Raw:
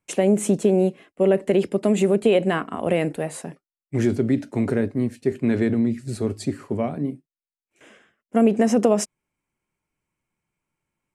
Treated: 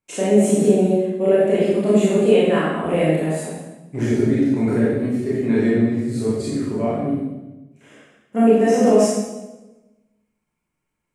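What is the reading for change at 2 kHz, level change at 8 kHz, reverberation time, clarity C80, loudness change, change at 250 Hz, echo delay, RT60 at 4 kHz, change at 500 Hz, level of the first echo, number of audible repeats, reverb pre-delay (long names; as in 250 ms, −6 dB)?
+3.0 dB, +2.5 dB, 1.1 s, 1.0 dB, +3.5 dB, +3.5 dB, no echo audible, 0.90 s, +4.0 dB, no echo audible, no echo audible, 24 ms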